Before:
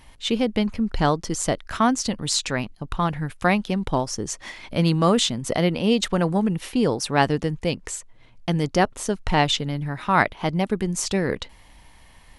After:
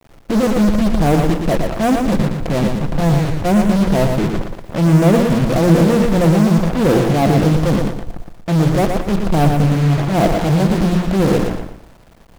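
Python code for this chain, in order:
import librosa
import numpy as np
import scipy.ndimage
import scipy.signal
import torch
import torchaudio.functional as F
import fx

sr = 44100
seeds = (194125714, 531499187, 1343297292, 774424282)

p1 = fx.transient(x, sr, attack_db=-12, sustain_db=11)
p2 = scipy.signal.sosfilt(scipy.signal.cheby1(4, 1.0, 700.0, 'lowpass', fs=sr, output='sos'), p1)
p3 = fx.hum_notches(p2, sr, base_hz=60, count=8)
p4 = p3 + 0.35 * np.pad(p3, (int(5.9 * sr / 1000.0), 0))[:len(p3)]
p5 = fx.fuzz(p4, sr, gain_db=46.0, gate_db=-37.0)
p6 = p4 + F.gain(torch.from_numpy(p5), -5.0).numpy()
p7 = fx.quant_dither(p6, sr, seeds[0], bits=8, dither='none')
p8 = p7 + fx.echo_feedback(p7, sr, ms=116, feedback_pct=31, wet_db=-5.0, dry=0)
y = F.gain(torch.from_numpy(p8), 1.5).numpy()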